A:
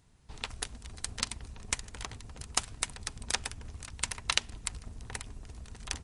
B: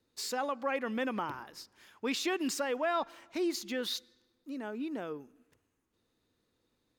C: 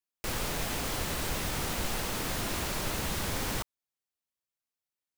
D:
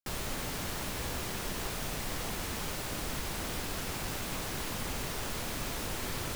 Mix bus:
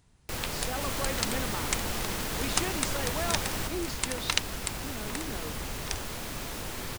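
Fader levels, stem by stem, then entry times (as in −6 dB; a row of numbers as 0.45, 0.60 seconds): +1.0, −3.5, −1.5, −0.5 decibels; 0.00, 0.35, 0.05, 0.75 seconds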